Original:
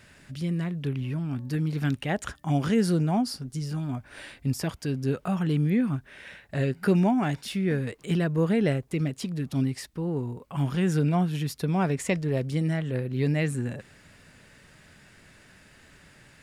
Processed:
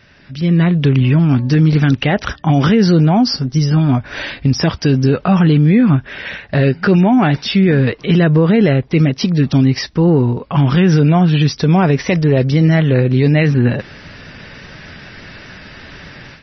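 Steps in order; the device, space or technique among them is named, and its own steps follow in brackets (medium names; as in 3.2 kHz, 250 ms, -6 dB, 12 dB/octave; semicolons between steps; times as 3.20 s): low-bitrate web radio (level rider gain up to 13.5 dB; peak limiter -10 dBFS, peak gain reduction 7.5 dB; trim +6 dB; MP3 24 kbps 24 kHz)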